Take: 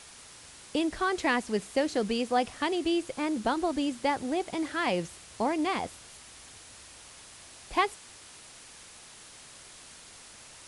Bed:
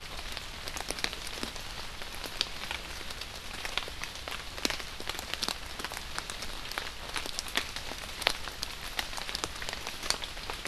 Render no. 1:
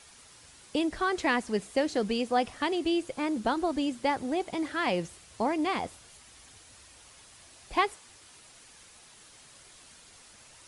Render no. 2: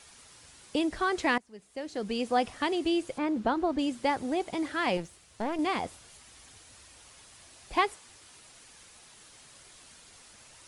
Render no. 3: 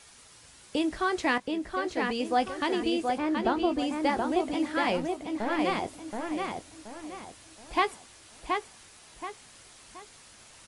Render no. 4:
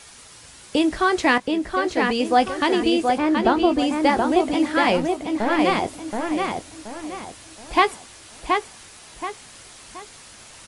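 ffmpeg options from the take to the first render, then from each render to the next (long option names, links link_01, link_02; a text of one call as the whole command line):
ffmpeg -i in.wav -af "afftdn=noise_reduction=6:noise_floor=-51" out.wav
ffmpeg -i in.wav -filter_complex "[0:a]asettb=1/sr,asplit=3[link_01][link_02][link_03];[link_01]atrim=end=3.184[link_04];[link_02]atrim=start=3.18:end=3.79,asetpts=PTS-STARTPTS,afade=type=in:duration=0.004:curve=qsin,afade=type=out:start_time=0.606:duration=0.004:curve=qsin,aemphasis=mode=reproduction:type=75fm[link_05];[link_03]atrim=start=3.786[link_06];[link_04][link_05]acrossfade=duration=0.004:curve1=hsin:curve2=qsin[link_07];[link_07][link_06]acrossfade=duration=0.004:curve1=qsin:curve2=hsin,asettb=1/sr,asplit=3[link_08][link_09][link_10];[link_08]atrim=end=4.974[link_11];[link_09]atrim=start=4.97:end=5.59,asetpts=PTS-STARTPTS,afade=type=in:duration=0.004:curve=qsin,afade=type=out:start_time=0.616:duration=0.004:curve=qsin,aeval=exprs='(tanh(20*val(0)+0.8)-tanh(0.8))/20':channel_layout=same[link_12];[link_10]atrim=start=5.586[link_13];[link_11][link_12]acrossfade=duration=0.004:curve1=hsin:curve2=qsin[link_14];[link_14][link_13]acrossfade=duration=0.004:curve1=qsin:curve2=hsin,asplit=2[link_15][link_16];[link_15]atrim=end=1.38,asetpts=PTS-STARTPTS,afade=type=out:start_time=1.376:duration=0.004:curve=hsin:silence=0.0794328[link_17];[link_16]atrim=start=1.38,asetpts=PTS-STARTPTS,afade=type=in:duration=0.89:curve=qua:silence=0.0794328[link_18];[link_17][link_18]concat=n=2:v=0:a=1" out.wav
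ffmpeg -i in.wav -filter_complex "[0:a]asplit=2[link_01][link_02];[link_02]adelay=19,volume=-12dB[link_03];[link_01][link_03]amix=inputs=2:normalize=0,asplit=2[link_04][link_05];[link_05]adelay=726,lowpass=frequency=3700:poles=1,volume=-3.5dB,asplit=2[link_06][link_07];[link_07]adelay=726,lowpass=frequency=3700:poles=1,volume=0.36,asplit=2[link_08][link_09];[link_09]adelay=726,lowpass=frequency=3700:poles=1,volume=0.36,asplit=2[link_10][link_11];[link_11]adelay=726,lowpass=frequency=3700:poles=1,volume=0.36,asplit=2[link_12][link_13];[link_13]adelay=726,lowpass=frequency=3700:poles=1,volume=0.36[link_14];[link_04][link_06][link_08][link_10][link_12][link_14]amix=inputs=6:normalize=0" out.wav
ffmpeg -i in.wav -af "volume=8.5dB" out.wav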